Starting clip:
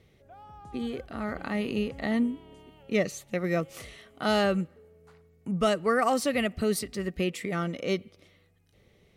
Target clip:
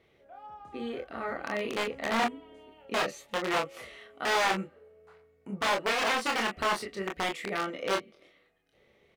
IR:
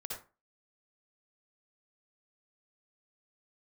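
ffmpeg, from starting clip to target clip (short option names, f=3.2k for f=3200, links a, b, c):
-filter_complex "[0:a]aeval=exprs='(mod(11.2*val(0)+1,2)-1)/11.2':c=same,acrossover=split=9600[a][b];[b]acompressor=threshold=-42dB:ratio=4:attack=1:release=60[c];[a][c]amix=inputs=2:normalize=0,bass=f=250:g=-14,treble=f=4k:g=-11,asplit=2[d][e];[e]aecho=0:1:26|40:0.668|0.355[f];[d][f]amix=inputs=2:normalize=0"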